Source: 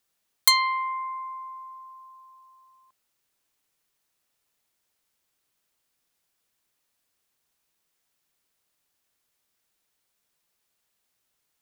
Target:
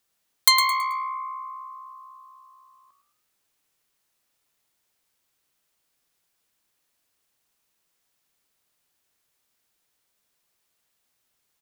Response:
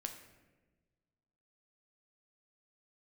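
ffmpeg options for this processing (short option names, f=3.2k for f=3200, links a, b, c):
-filter_complex "[0:a]asplit=5[a][b][c][d][e];[b]adelay=108,afreqshift=64,volume=-8dB[f];[c]adelay=216,afreqshift=128,volume=-17.1dB[g];[d]adelay=324,afreqshift=192,volume=-26.2dB[h];[e]adelay=432,afreqshift=256,volume=-35.4dB[i];[a][f][g][h][i]amix=inputs=5:normalize=0,volume=1.5dB"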